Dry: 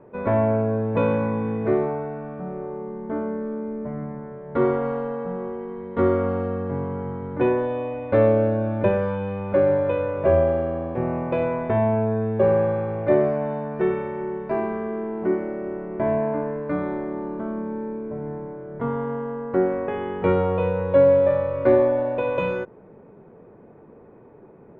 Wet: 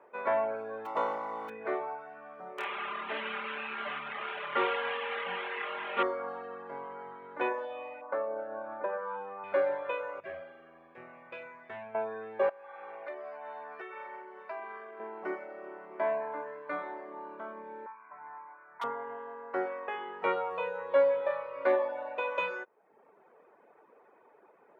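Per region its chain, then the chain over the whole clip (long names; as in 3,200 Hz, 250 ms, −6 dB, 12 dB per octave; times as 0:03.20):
0:00.85–0:01.48: compressing power law on the bin magnitudes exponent 0.47 + Savitzky-Golay smoothing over 65 samples
0:02.58–0:06.03: linear delta modulator 16 kbit/s, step −25 dBFS + comb filter 5 ms, depth 54% + flutter between parallel walls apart 4.8 metres, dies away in 0.28 s
0:08.01–0:09.44: high shelf with overshoot 1,900 Hz −13 dB, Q 1.5 + downward compressor 3 to 1, threshold −21 dBFS + high-pass filter 150 Hz
0:10.20–0:11.95: drawn EQ curve 100 Hz 0 dB, 870 Hz −18 dB, 1,600 Hz −7 dB + highs frequency-modulated by the lows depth 0.13 ms
0:12.49–0:15.00: high-pass filter 510 Hz 6 dB per octave + downward compressor 4 to 1, threshold −30 dBFS
0:17.86–0:18.84: Chebyshev low-pass filter 2,500 Hz, order 5 + low shelf with overshoot 700 Hz −10.5 dB, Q 3 + gain into a clipping stage and back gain 29 dB
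whole clip: reverb reduction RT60 0.8 s; high-pass filter 840 Hz 12 dB per octave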